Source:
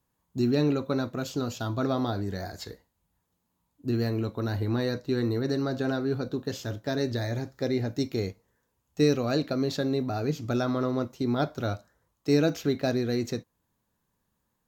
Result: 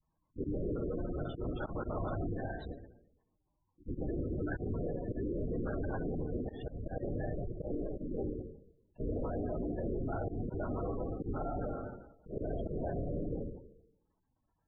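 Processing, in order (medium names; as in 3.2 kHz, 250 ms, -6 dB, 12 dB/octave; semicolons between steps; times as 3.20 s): partial rectifier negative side -12 dB; LPC vocoder at 8 kHz whisper; 7.68–8.22 s: peaking EQ 80 Hz -13.5 dB 1.5 oct; plate-style reverb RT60 0.86 s, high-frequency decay 0.9×, DRR 1.5 dB; 11.67–12.37 s: compression 6:1, threshold -32 dBFS, peak gain reduction 12.5 dB; slow attack 135 ms; peak limiter -28 dBFS, peak gain reduction 13.5 dB; spectral gate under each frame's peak -15 dB strong; 4.19–5.01 s: peaking EQ 1.5 kHz +13.5 dB 0.26 oct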